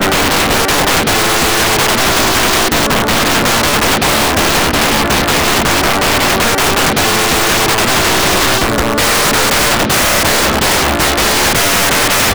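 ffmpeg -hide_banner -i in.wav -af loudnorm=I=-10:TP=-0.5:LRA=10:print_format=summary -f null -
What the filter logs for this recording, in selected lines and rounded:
Input Integrated:    -10.1 LUFS
Input True Peak:      -4.1 dBTP
Input LRA:             0.6 LU
Input Threshold:     -20.1 LUFS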